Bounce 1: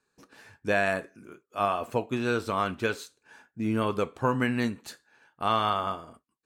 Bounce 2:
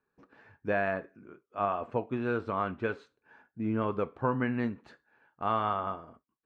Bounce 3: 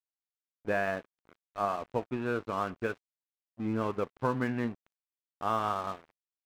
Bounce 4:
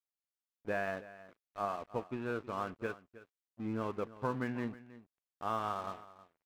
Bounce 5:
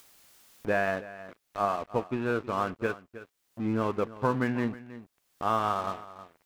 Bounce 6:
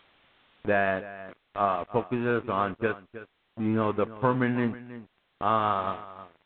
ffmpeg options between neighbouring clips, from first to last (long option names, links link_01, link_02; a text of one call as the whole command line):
ffmpeg -i in.wav -af "lowpass=1800,volume=-3dB" out.wav
ffmpeg -i in.wav -af "aeval=exprs='sgn(val(0))*max(abs(val(0))-0.00596,0)':channel_layout=same" out.wav
ffmpeg -i in.wav -af "aecho=1:1:317:0.141,volume=-5.5dB" out.wav
ffmpeg -i in.wav -af "acompressor=mode=upward:threshold=-44dB:ratio=2.5,volume=8.5dB" out.wav
ffmpeg -i in.wav -af "volume=2.5dB" -ar 8000 -c:a pcm_alaw out.wav